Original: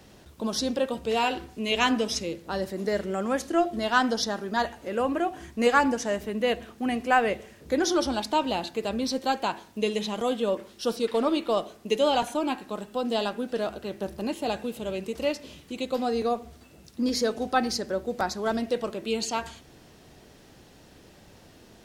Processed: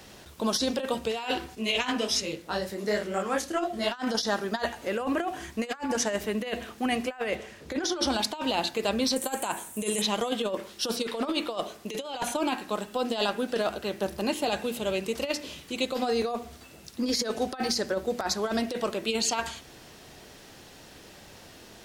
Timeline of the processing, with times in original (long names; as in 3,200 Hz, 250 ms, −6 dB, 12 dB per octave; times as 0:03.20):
0:01.55–0:03.92: micro pitch shift up and down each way 44 cents
0:07.35–0:08.07: high-shelf EQ 10,000 Hz −11.5 dB
0:09.16–0:10.02: high shelf with overshoot 6,500 Hz +11.5 dB, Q 3
whole clip: tilt shelving filter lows −3.5 dB, about 650 Hz; mains-hum notches 60/120/180/240/300 Hz; compressor whose output falls as the input rises −28 dBFS, ratio −0.5; level +1 dB